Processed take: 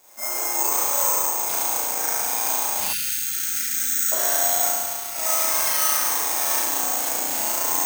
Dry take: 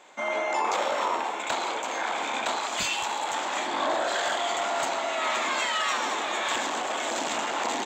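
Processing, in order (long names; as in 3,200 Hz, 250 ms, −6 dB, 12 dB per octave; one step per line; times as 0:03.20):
0:04.67–0:05.15: parametric band 610 Hz −13 dB 2.9 octaves
spring reverb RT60 1.4 s, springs 34 ms, chirp 60 ms, DRR −8 dB
bad sample-rate conversion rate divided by 6×, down none, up zero stuff
0:02.93–0:04.12: linear-phase brick-wall band-stop 280–1,300 Hz
level −11 dB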